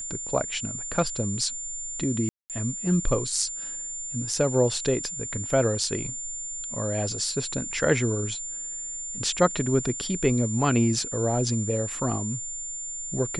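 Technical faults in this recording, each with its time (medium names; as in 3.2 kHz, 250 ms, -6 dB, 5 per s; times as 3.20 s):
whine 7.2 kHz -32 dBFS
2.29–2.50 s: dropout 208 ms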